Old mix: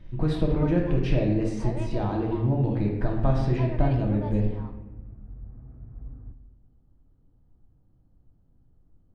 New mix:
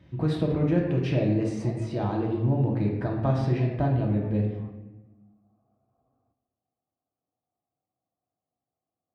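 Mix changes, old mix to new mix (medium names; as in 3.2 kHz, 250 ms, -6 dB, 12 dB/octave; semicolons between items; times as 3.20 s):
background: add vowel filter a; master: add high-pass 72 Hz 24 dB/octave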